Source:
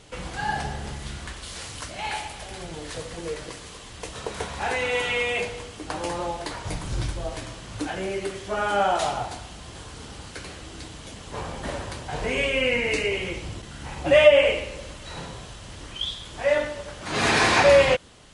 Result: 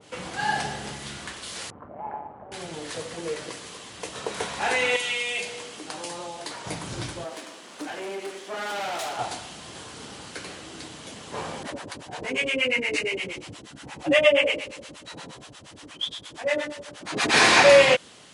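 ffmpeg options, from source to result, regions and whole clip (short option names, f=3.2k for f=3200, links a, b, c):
-filter_complex "[0:a]asettb=1/sr,asplit=3[a][b][c];[a]atrim=end=1.704[d];[b]atrim=start=1.7:end=2.52,asetpts=PTS-STARTPTS,afade=t=in:d=0.004:c=qsin,afade=t=out:st=0.816:d=0.004:c=qsin,lowpass=f=1.1k:w=0.5412,lowpass=f=1.1k:w=1.3066,tremolo=f=150:d=0.571[e];[c]atrim=start=2.516[f];[d][e]acrossfade=d=0.004:c1=hsin:c2=qsin[g];[g][f]acrossfade=d=0.004:c1=qsin:c2=hsin,asettb=1/sr,asplit=3[h][i][j];[h]atrim=end=4.964[k];[i]atrim=start=4.96:end=6.67,asetpts=PTS-STARTPTS,afade=t=in:d=0.004:c=qsin,afade=t=out:st=1.706:d=0.004:c=qsin,equalizer=f=73:t=o:w=1.3:g=-13,acrossover=split=150|3000[l][m][n];[m]acompressor=threshold=-37dB:ratio=3:attack=3.2:release=140:knee=2.83:detection=peak[o];[l][o][n]amix=inputs=3:normalize=0[p];[j]atrim=start=6.666[q];[k][p]acrossfade=d=0.004:c1=hsin:c2=qsin[r];[r][q]acrossfade=d=0.004:c1=qsin:c2=hsin,asettb=1/sr,asplit=3[s][t][u];[s]atrim=end=7.244[v];[t]atrim=start=7.24:end=9.19,asetpts=PTS-STARTPTS,afade=t=in:d=0.004:c=qsin,afade=t=out:st=1.946:d=0.004:c=qsin,highpass=f=240:w=0.5412,highpass=f=240:w=1.3066,aeval=exprs='(tanh(31.6*val(0)+0.65)-tanh(0.65))/31.6':c=same[w];[u]atrim=start=9.186[x];[v][w]acrossfade=d=0.004:c1=hsin:c2=qsin[y];[y][x]acrossfade=d=0.004:c1=qsin:c2=hsin,asettb=1/sr,asplit=3[z][aa][ab];[z]atrim=end=11.634[ac];[aa]atrim=start=11.63:end=17.34,asetpts=PTS-STARTPTS,afade=t=in:d=0.004:c=qsin,afade=t=out:st=5.706:d=0.004:c=qsin,equalizer=f=290:w=5.2:g=6.5,acrossover=split=610[ad][ae];[ad]aeval=exprs='val(0)*(1-1/2+1/2*cos(2*PI*8.5*n/s))':c=same[af];[ae]aeval=exprs='val(0)*(1-1/2-1/2*cos(2*PI*8.5*n/s))':c=same[ag];[af][ag]amix=inputs=2:normalize=0[ah];[ab]atrim=start=17.336[ai];[ac][ah]acrossfade=d=0.004:c1=hsin:c2=qsin[aj];[aj][ai]acrossfade=d=0.004:c1=qsin:c2=hsin,highpass=160,adynamicequalizer=threshold=0.0178:dfrequency=1700:dqfactor=0.7:tfrequency=1700:tqfactor=0.7:attack=5:release=100:ratio=0.375:range=2:mode=boostabove:tftype=highshelf,volume=1dB"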